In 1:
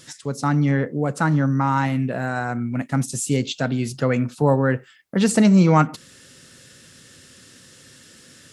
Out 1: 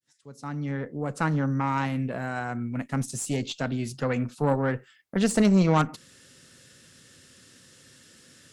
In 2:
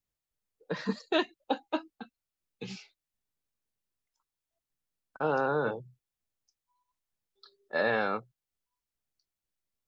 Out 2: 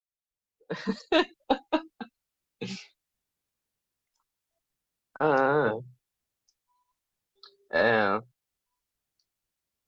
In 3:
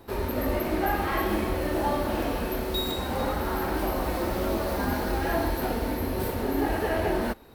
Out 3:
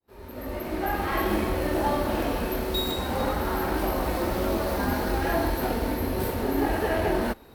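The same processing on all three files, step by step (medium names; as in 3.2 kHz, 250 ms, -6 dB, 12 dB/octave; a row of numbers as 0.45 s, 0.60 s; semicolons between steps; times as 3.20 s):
fade-in on the opening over 1.26 s; Chebyshev shaper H 6 -17 dB, 8 -26 dB, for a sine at -3 dBFS; normalise loudness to -27 LUFS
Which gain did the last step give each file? -6.0 dB, +4.5 dB, +1.5 dB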